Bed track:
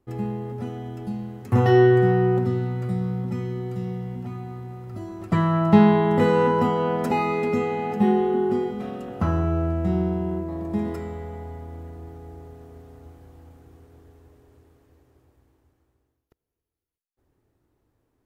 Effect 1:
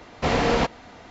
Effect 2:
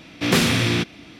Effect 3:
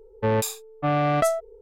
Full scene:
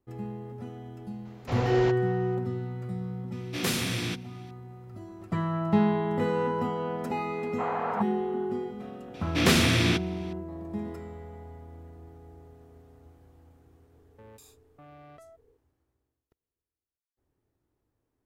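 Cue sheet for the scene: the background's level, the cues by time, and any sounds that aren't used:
bed track -8.5 dB
1.25 add 1 -12.5 dB
3.32 add 2 -12 dB + high shelf 6600 Hz +10 dB
7.36 add 1 -3.5 dB + Butterworth band-pass 1000 Hz, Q 1.4
9.14 add 2 -3.5 dB
13.96 add 3 -17 dB + compressor, threshold -33 dBFS

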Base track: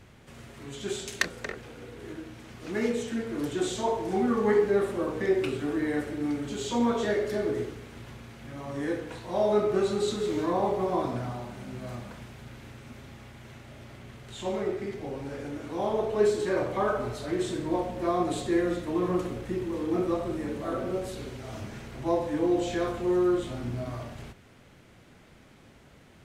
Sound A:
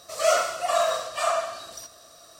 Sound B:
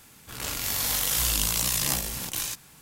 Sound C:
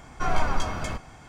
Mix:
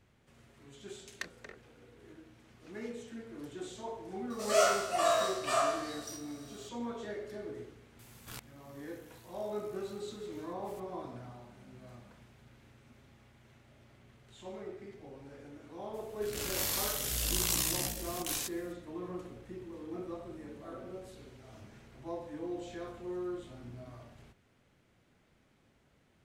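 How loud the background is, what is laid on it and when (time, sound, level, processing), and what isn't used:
base track -14 dB
4.3 add A -6.5 dB + spectral trails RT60 0.37 s
7.99 add B -6 dB + flipped gate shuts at -22 dBFS, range -33 dB
15.93 add B -4.5 dB, fades 0.02 s + rotary speaker horn 1.1 Hz
not used: C

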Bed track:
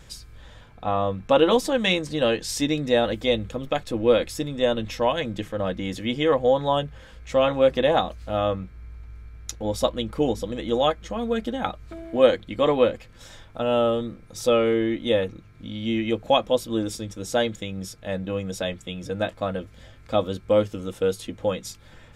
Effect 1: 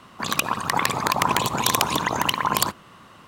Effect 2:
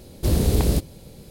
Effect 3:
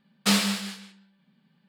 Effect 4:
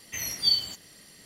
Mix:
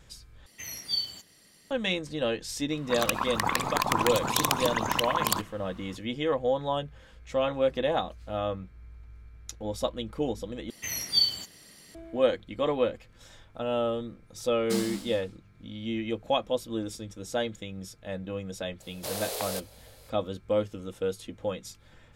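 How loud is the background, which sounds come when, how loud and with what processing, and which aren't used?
bed track -7 dB
0.46 replace with 4 -6.5 dB
2.7 add 1 -5.5 dB
10.7 replace with 4 -0.5 dB
14.44 add 3 -7.5 dB + bell 2200 Hz -12.5 dB 1.9 oct
18.8 add 2 -3 dB + steep high-pass 510 Hz

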